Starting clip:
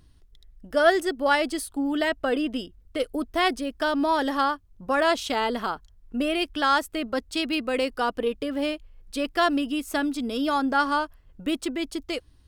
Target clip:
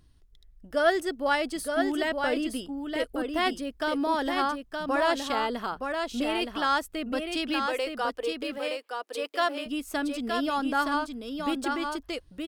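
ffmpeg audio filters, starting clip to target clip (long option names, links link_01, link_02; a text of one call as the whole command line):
ffmpeg -i in.wav -filter_complex "[0:a]asettb=1/sr,asplit=3[link_01][link_02][link_03];[link_01]atrim=end=7.664[link_04];[link_02]atrim=start=7.66:end=9.66,asetpts=PTS-STARTPTS,afade=type=in:duration=0.004:curve=qsin,afade=type=out:start_time=1.996:duration=0.004:curve=qsin,highpass=frequency=390:width=0.5412,highpass=frequency=390:width=1.3066[link_05];[link_03]atrim=start=9.656[link_06];[link_04][link_05]acrossfade=duration=0.004:curve1=hsin:curve2=qsin[link_07];[link_07][link_06]acrossfade=duration=0.004:curve1=qsin:curve2=hsin,aecho=1:1:919:0.562,volume=-4dB" out.wav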